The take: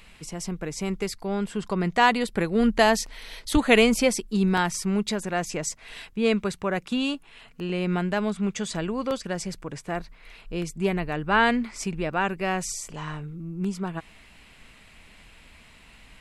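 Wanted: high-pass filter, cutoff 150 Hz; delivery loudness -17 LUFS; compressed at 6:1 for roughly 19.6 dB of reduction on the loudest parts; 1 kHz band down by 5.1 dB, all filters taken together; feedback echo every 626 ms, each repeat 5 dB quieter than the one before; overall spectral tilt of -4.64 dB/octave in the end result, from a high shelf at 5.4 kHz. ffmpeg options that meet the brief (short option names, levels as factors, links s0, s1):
-af "highpass=150,equalizer=f=1000:t=o:g=-6.5,highshelf=f=5400:g=-8,acompressor=threshold=0.0141:ratio=6,aecho=1:1:626|1252|1878|2504|3130|3756|4382:0.562|0.315|0.176|0.0988|0.0553|0.031|0.0173,volume=13.3"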